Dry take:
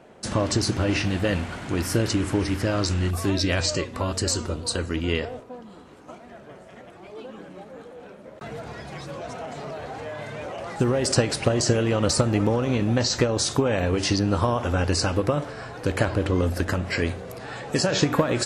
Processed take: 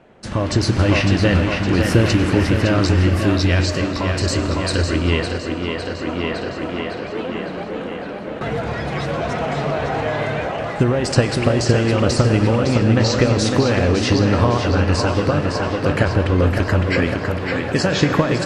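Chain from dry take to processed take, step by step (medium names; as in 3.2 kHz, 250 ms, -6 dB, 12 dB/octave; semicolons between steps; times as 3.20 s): peaking EQ 2.5 kHz +7.5 dB 2.5 oct; tape echo 558 ms, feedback 70%, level -4 dB, low-pass 5.2 kHz; level rider gain up to 11.5 dB; tilt EQ -2 dB/octave; on a send at -11.5 dB: reverberation RT60 2.2 s, pre-delay 88 ms; on the sum: trim -4 dB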